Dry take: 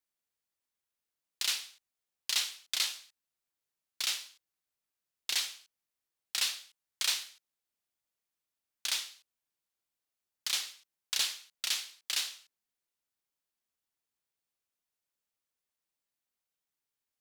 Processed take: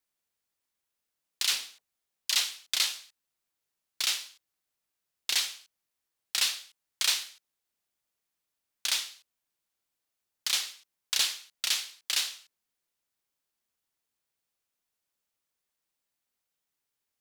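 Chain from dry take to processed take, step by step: 1.45–2.40 s: phase dispersion lows, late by 62 ms, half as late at 500 Hz; trim +4 dB

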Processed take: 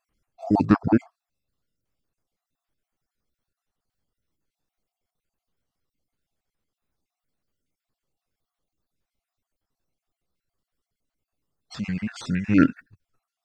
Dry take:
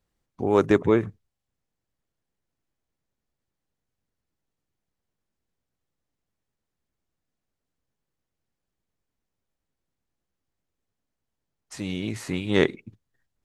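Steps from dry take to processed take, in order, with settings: random holes in the spectrogram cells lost 36%; formant shift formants -6 st; trim +4 dB

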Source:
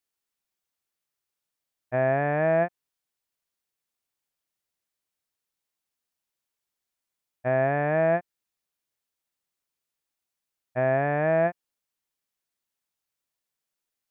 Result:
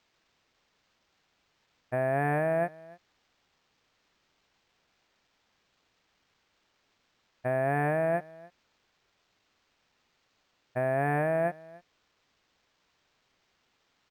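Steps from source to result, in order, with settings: band-stop 580 Hz, Q 17; peak limiter -18 dBFS, peak gain reduction 5.5 dB; word length cut 12-bit, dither triangular; on a send: delay 295 ms -22 dB; on the sum: decimation joined by straight lines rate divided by 4×

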